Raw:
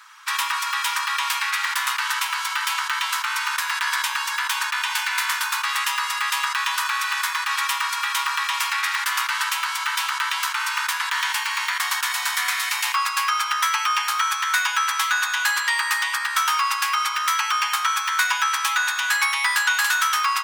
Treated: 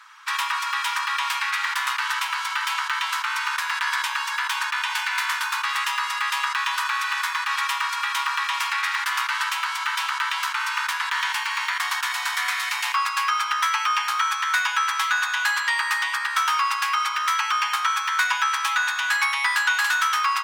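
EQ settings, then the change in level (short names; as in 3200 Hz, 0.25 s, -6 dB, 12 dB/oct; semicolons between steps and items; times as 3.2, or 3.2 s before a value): high shelf 6100 Hz -9.5 dB; 0.0 dB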